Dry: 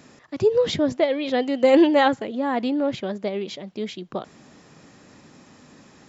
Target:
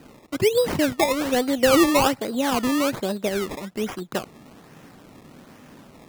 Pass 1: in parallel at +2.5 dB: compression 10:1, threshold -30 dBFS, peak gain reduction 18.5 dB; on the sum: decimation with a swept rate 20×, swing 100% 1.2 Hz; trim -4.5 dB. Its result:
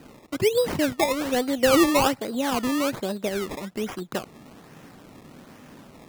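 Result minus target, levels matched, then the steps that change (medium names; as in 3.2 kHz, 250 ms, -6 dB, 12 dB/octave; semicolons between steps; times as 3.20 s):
compression: peak gain reduction +6.5 dB
change: compression 10:1, threshold -22.5 dBFS, peak gain reduction 11.5 dB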